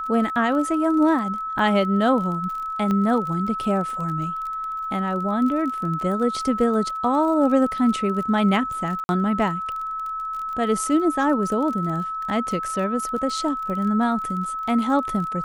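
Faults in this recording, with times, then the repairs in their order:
surface crackle 28 per second −30 dBFS
whistle 1,300 Hz −26 dBFS
0:02.91: click −14 dBFS
0:09.04–0:09.09: drop-out 51 ms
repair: click removal
notch filter 1,300 Hz, Q 30
repair the gap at 0:09.04, 51 ms

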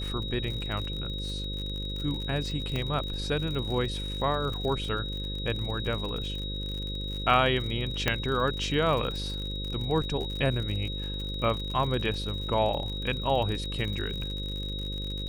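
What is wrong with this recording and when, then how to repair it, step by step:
mains buzz 50 Hz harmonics 11 −35 dBFS
surface crackle 57 per second −34 dBFS
whistle 3,800 Hz −36 dBFS
0:02.76: click −19 dBFS
0:08.08: click −9 dBFS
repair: click removal
notch filter 3,800 Hz, Q 30
hum removal 50 Hz, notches 11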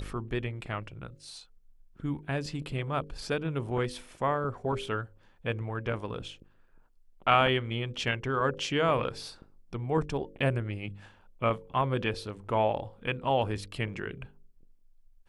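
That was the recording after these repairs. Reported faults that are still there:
0:02.76: click
0:08.08: click

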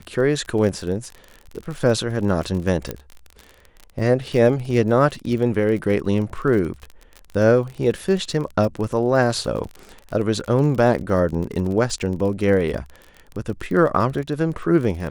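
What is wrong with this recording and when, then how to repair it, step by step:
surface crackle 36 per second −28 dBFS
0:02.91: click −12 dBFS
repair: click removal

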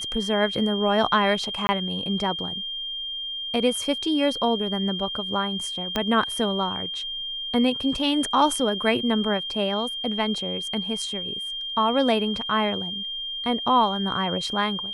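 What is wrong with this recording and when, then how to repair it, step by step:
whistle 3,200 Hz −29 dBFS
0:01.67–0:01.69: drop-out 20 ms
0:05.96: click −10 dBFS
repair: click removal
notch filter 3,200 Hz, Q 30
repair the gap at 0:01.67, 20 ms

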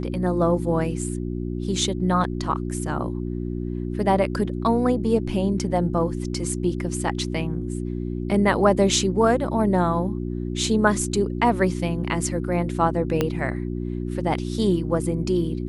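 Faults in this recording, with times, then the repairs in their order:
mains hum 60 Hz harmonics 6 −28 dBFS
0:13.21: click −8 dBFS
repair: click removal
hum removal 60 Hz, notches 6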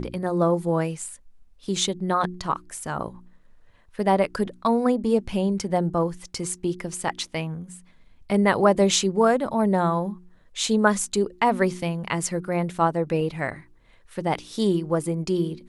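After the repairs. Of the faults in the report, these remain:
0:13.21: click

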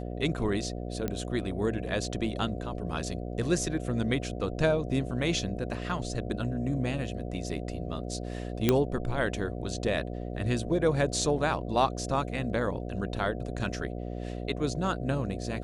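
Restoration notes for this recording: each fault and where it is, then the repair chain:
mains buzz 60 Hz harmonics 12 −36 dBFS
0:01.08: click −17 dBFS
0:08.69: click −8 dBFS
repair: click removal
hum removal 60 Hz, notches 12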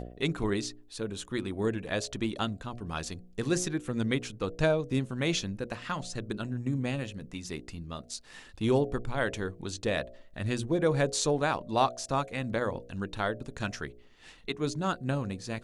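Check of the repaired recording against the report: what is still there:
none of them is left

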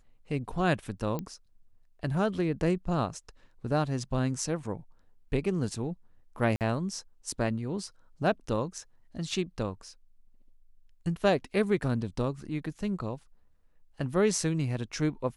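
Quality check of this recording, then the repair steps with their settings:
0:01.19: click −21 dBFS
0:06.56–0:06.61: drop-out 48 ms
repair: click removal
repair the gap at 0:06.56, 48 ms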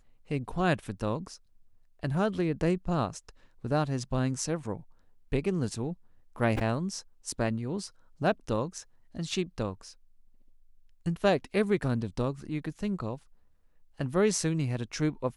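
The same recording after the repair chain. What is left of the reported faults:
none of them is left

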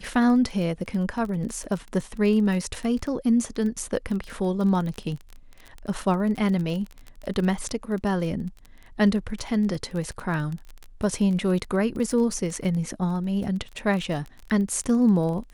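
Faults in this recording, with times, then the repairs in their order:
surface crackle 24 per second −30 dBFS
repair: click removal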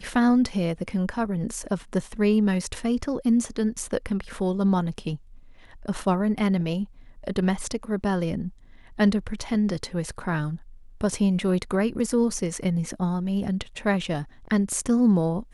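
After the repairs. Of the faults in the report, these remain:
none of them is left

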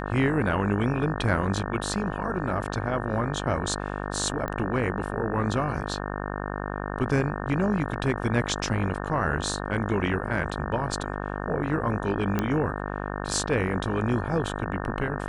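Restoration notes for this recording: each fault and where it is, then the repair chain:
mains buzz 50 Hz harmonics 36 −32 dBFS
0:04.48: click −18 dBFS
0:12.39: click −12 dBFS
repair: click removal
hum removal 50 Hz, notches 36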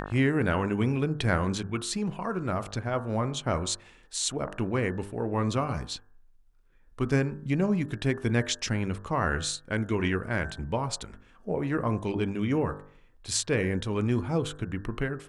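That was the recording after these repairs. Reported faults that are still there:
none of them is left

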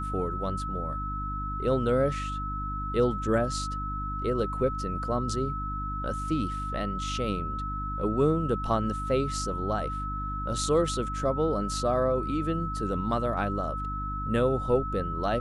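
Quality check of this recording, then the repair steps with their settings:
mains hum 50 Hz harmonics 6 −35 dBFS
whistle 1,300 Hz −33 dBFS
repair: hum removal 50 Hz, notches 6
notch filter 1,300 Hz, Q 30

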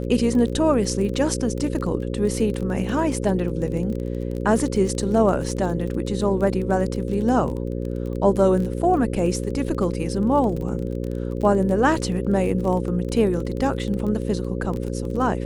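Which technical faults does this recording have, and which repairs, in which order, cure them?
mains buzz 60 Hz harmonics 9 −27 dBFS
surface crackle 23 per second −28 dBFS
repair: click removal
hum removal 60 Hz, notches 9

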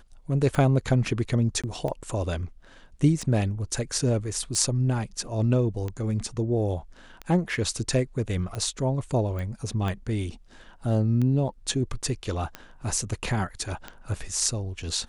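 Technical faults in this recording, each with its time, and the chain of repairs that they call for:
scratch tick 45 rpm
0:01.62–0:01.64: drop-out 16 ms
0:09.39: click −23 dBFS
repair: click removal
repair the gap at 0:01.62, 16 ms

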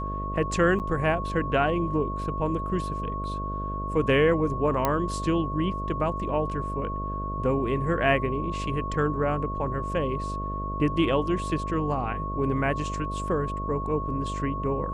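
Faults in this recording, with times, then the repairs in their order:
mains buzz 50 Hz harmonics 13 −33 dBFS
whistle 1,100 Hz −32 dBFS
0:00.79–0:00.80: drop-out 8.6 ms
0:04.85: click −9 dBFS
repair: click removal
hum removal 50 Hz, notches 13
notch filter 1,100 Hz, Q 30
repair the gap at 0:00.79, 8.6 ms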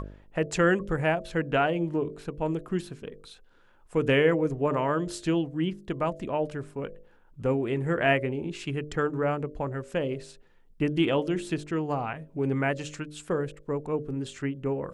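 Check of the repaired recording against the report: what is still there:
none of them is left

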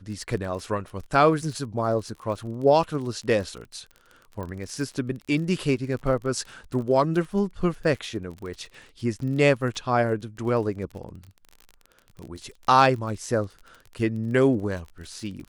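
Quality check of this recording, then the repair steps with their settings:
surface crackle 29 per second −34 dBFS
0:04.43: click −24 dBFS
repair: click removal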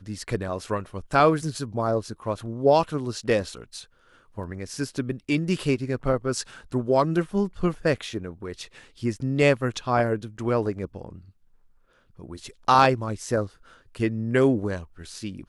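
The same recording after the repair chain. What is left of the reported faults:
0:04.43: click

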